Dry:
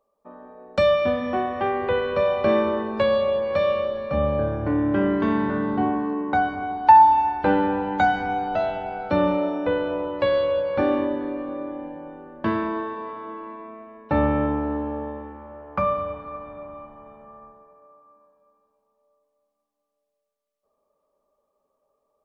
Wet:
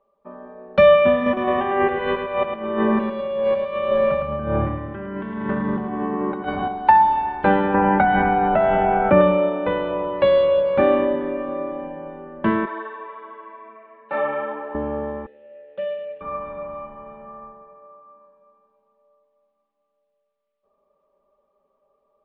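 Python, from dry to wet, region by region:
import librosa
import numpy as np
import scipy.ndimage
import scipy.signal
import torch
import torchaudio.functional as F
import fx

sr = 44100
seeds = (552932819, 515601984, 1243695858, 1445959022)

y = fx.chain(x, sr, fx.over_compress(threshold_db=-27.0, ratio=-0.5),
    fx.echo_feedback(ms=108, feedback_pct=45, wet_db=-6.0), at=(1.26, 6.68))
y = fx.chain(y, sr, fx.lowpass(hz=2500.0, slope=24),
    fx.env_flatten(amount_pct=70), at=(7.74, 9.21))
y = fx.chain(y, sr, fx.highpass(hz=540.0, slope=12),
    fx.detune_double(cents=21), at=(12.65, 14.75))
y = fx.chain(y, sr, fx.median_filter(points=25),
    fx.vowel_filter(vowel='e'), at=(15.26, 16.21))
y = scipy.signal.sosfilt(scipy.signal.butter(4, 3400.0, 'lowpass', fs=sr, output='sos'), y)
y = fx.notch(y, sr, hz=720.0, q=12.0)
y = y + 0.47 * np.pad(y, (int(5.1 * sr / 1000.0), 0))[:len(y)]
y = F.gain(torch.from_numpy(y), 3.5).numpy()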